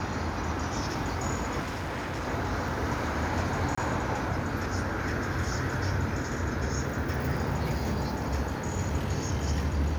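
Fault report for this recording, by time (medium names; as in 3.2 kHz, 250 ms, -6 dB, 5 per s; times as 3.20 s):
1.60–2.28 s: clipped -30 dBFS
3.75–3.77 s: dropout 25 ms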